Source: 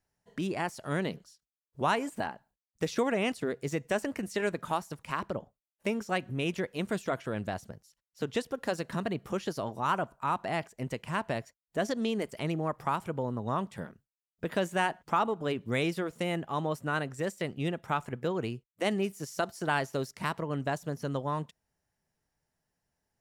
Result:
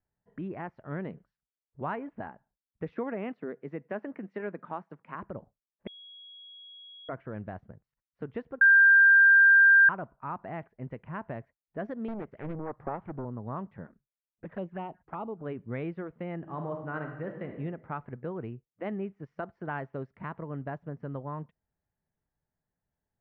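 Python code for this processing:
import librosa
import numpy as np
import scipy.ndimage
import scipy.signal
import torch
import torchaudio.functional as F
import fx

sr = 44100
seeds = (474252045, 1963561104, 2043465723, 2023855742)

y = fx.highpass(x, sr, hz=170.0, slope=24, at=(2.92, 5.15))
y = fx.doppler_dist(y, sr, depth_ms=0.93, at=(12.08, 13.25))
y = fx.env_flanger(y, sr, rest_ms=9.0, full_db=-25.5, at=(13.86, 15.38), fade=0.02)
y = fx.reverb_throw(y, sr, start_s=16.36, length_s=1.15, rt60_s=1.1, drr_db=4.0)
y = fx.edit(y, sr, fx.bleep(start_s=5.87, length_s=1.22, hz=3320.0, db=-21.5),
    fx.bleep(start_s=8.61, length_s=1.28, hz=1590.0, db=-7.0), tone=tone)
y = scipy.signal.sosfilt(scipy.signal.butter(4, 2000.0, 'lowpass', fs=sr, output='sos'), y)
y = fx.low_shelf(y, sr, hz=270.0, db=5.5)
y = y * librosa.db_to_amplitude(-7.0)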